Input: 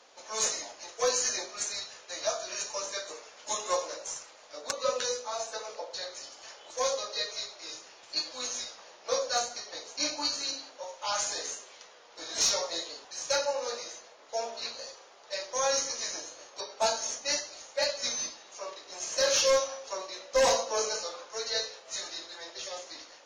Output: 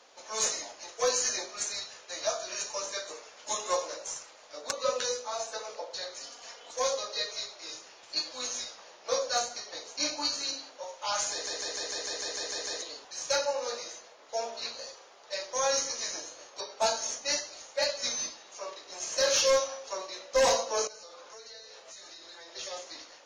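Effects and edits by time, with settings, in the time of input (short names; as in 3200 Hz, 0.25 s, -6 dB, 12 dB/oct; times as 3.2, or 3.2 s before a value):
6.2–6.75 comb 4.2 ms
11.32 stutter in place 0.15 s, 10 plays
20.87–22.54 compressor 12:1, threshold -44 dBFS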